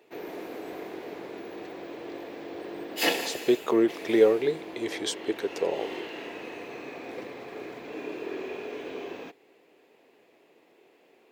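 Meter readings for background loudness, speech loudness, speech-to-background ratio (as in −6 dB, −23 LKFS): −36.5 LKFS, −26.5 LKFS, 10.0 dB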